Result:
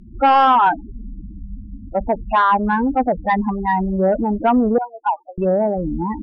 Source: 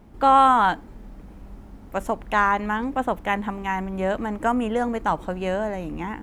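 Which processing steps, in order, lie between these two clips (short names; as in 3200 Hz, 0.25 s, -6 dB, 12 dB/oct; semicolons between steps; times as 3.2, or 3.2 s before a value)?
loudest bins only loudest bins 8; 4.78–5.38 inverse Chebyshev high-pass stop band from 190 Hz, stop band 70 dB; in parallel at -11 dB: sine folder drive 11 dB, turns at -6 dBFS; on the sum: treble ducked by the level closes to 2000 Hz, closed at -11.5 dBFS; gain +1.5 dB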